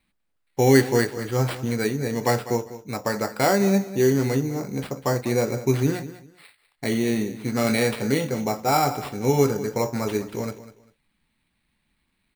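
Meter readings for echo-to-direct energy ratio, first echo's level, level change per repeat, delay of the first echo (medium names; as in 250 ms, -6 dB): -15.0 dB, -15.0 dB, -13.0 dB, 198 ms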